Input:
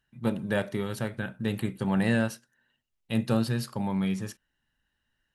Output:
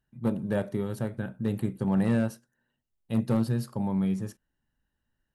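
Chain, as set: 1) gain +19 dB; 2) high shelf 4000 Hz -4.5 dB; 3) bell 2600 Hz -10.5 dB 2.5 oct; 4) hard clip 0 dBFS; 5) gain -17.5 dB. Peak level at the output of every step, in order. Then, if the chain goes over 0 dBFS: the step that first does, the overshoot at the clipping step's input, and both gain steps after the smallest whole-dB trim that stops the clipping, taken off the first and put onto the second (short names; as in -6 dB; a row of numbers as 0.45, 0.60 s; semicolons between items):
+6.0, +6.0, +4.5, 0.0, -17.5 dBFS; step 1, 4.5 dB; step 1 +14 dB, step 5 -12.5 dB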